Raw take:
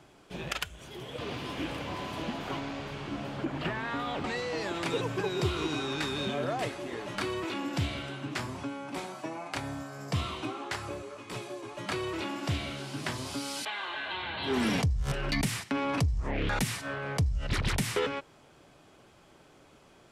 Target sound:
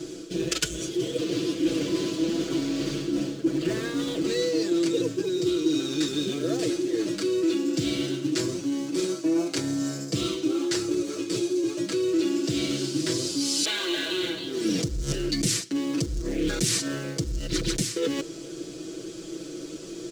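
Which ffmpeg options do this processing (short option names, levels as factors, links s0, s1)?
-filter_complex "[0:a]asplit=2[s0][s1];[s1]acrusher=bits=2:mode=log:mix=0:aa=0.000001,volume=0.501[s2];[s0][s2]amix=inputs=2:normalize=0,firequalizer=gain_entry='entry(160,0);entry(340,15);entry(820,-14);entry(1400,-4);entry(2100,-4);entry(4500,10);entry(14000,-14)':delay=0.05:min_phase=1,areverse,acompressor=threshold=0.02:ratio=6,areverse,aexciter=amount=3.6:drive=1.5:freq=6300,aecho=1:1:6.1:0.95,volume=2.11" -ar 44100 -c:a ac3 -b:a 320k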